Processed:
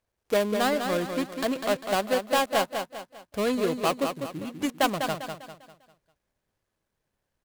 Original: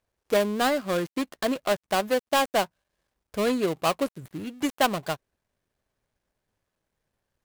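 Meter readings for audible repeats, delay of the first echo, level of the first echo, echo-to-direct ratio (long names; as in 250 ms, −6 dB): 4, 199 ms, −6.5 dB, −6.0 dB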